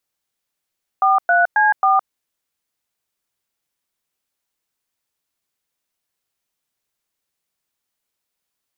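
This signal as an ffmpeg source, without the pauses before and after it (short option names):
-f lavfi -i "aevalsrc='0.2*clip(min(mod(t,0.27),0.164-mod(t,0.27))/0.002,0,1)*(eq(floor(t/0.27),0)*(sin(2*PI*770*mod(t,0.27))+sin(2*PI*1209*mod(t,0.27)))+eq(floor(t/0.27),1)*(sin(2*PI*697*mod(t,0.27))+sin(2*PI*1477*mod(t,0.27)))+eq(floor(t/0.27),2)*(sin(2*PI*852*mod(t,0.27))+sin(2*PI*1633*mod(t,0.27)))+eq(floor(t/0.27),3)*(sin(2*PI*770*mod(t,0.27))+sin(2*PI*1209*mod(t,0.27))))':d=1.08:s=44100"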